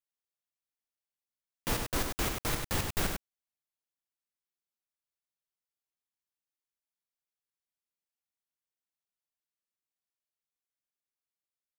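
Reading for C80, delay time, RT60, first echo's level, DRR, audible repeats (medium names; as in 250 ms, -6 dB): no reverb, 98 ms, no reverb, -5.5 dB, no reverb, 1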